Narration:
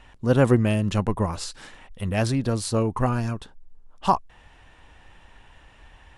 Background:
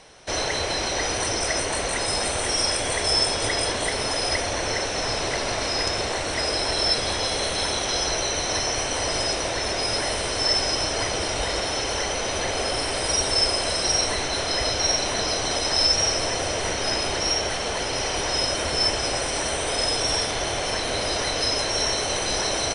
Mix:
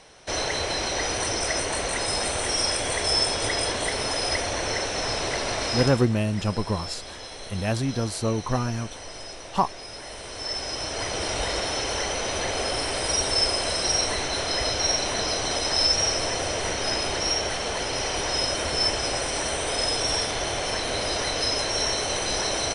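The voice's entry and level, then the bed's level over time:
5.50 s, −2.5 dB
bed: 0:05.80 −1.5 dB
0:06.10 −14.5 dB
0:09.95 −14.5 dB
0:11.31 −1.5 dB

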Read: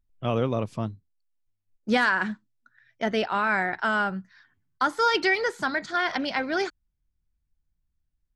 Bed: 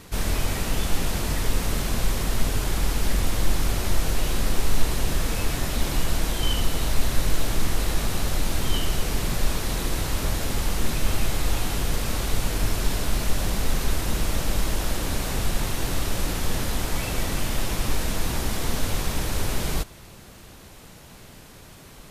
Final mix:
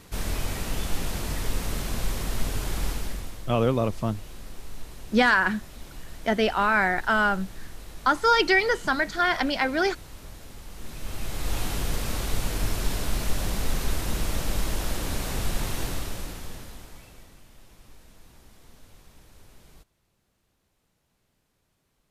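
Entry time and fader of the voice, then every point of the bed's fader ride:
3.25 s, +2.5 dB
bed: 0:02.89 −4.5 dB
0:03.46 −18 dB
0:10.67 −18 dB
0:11.60 −3 dB
0:15.81 −3 dB
0:17.43 −27 dB

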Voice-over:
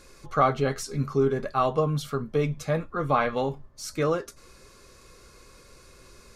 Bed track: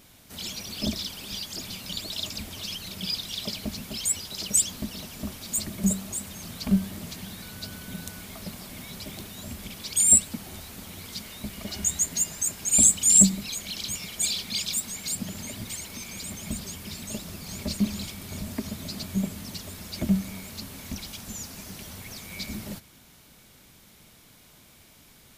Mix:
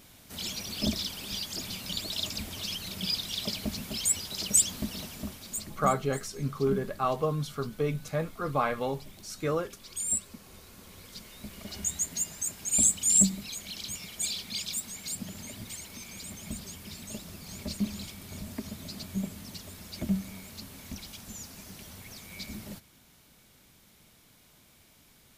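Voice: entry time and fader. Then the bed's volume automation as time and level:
5.45 s, −4.5 dB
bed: 0:05.03 −0.5 dB
0:05.94 −12.5 dB
0:10.39 −12.5 dB
0:11.85 −5.5 dB

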